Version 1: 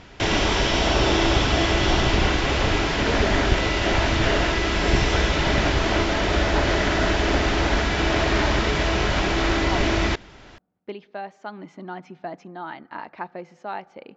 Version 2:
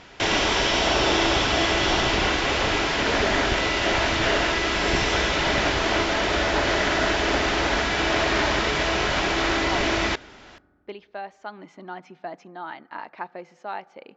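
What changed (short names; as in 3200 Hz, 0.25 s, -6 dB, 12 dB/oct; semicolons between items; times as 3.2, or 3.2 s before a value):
background: send on; master: add low shelf 240 Hz -10.5 dB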